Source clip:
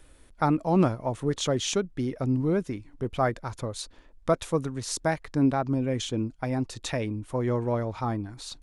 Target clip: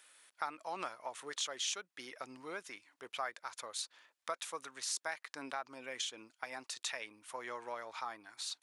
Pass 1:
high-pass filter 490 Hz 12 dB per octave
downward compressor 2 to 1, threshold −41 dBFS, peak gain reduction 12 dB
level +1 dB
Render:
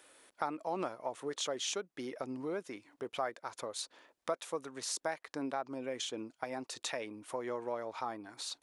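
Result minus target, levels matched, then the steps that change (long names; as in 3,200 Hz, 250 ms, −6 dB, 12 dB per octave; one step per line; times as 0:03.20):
500 Hz band +6.5 dB
change: high-pass filter 1,300 Hz 12 dB per octave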